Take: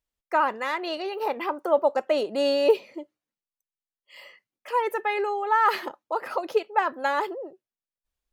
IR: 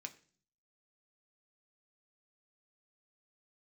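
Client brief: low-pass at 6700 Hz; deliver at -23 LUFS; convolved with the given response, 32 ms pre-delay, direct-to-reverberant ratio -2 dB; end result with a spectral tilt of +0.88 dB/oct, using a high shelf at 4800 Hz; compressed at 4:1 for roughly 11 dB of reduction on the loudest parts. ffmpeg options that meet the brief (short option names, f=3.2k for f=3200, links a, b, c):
-filter_complex "[0:a]lowpass=6.7k,highshelf=f=4.8k:g=9,acompressor=threshold=-28dB:ratio=4,asplit=2[a][b];[1:a]atrim=start_sample=2205,adelay=32[c];[b][c]afir=irnorm=-1:irlink=0,volume=6dB[d];[a][d]amix=inputs=2:normalize=0,volume=6dB"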